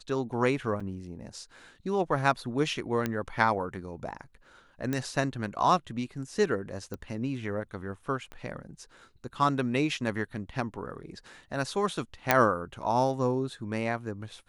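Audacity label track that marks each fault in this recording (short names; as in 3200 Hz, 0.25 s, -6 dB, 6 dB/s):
0.800000	0.800000	gap 4.9 ms
3.060000	3.060000	pop -15 dBFS
4.930000	4.930000	pop -17 dBFS
6.940000	6.940000	pop -24 dBFS
8.320000	8.320000	pop -28 dBFS
12.310000	12.310000	pop -5 dBFS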